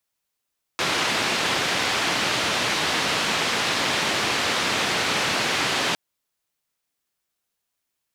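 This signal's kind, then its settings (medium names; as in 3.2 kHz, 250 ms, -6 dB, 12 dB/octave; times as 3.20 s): noise band 120–3600 Hz, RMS -23.5 dBFS 5.16 s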